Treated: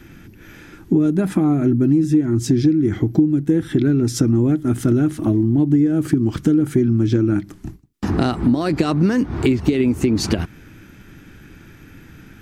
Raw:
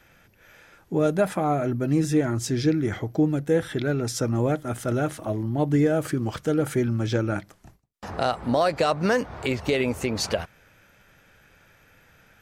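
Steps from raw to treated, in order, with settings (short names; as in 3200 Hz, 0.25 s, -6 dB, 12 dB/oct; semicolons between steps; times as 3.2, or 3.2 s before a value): resonant low shelf 420 Hz +9 dB, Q 3; compressor 6:1, threshold -22 dBFS, peak gain reduction 18.5 dB; gain +8 dB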